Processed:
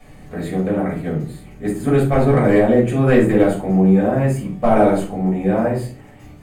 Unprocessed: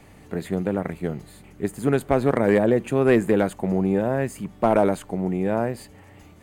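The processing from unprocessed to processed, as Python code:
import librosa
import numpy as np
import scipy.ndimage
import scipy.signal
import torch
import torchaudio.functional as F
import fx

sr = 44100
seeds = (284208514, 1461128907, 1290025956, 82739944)

y = fx.room_shoebox(x, sr, seeds[0], volume_m3=320.0, walls='furnished', distance_m=6.2)
y = y * 10.0 ** (-6.0 / 20.0)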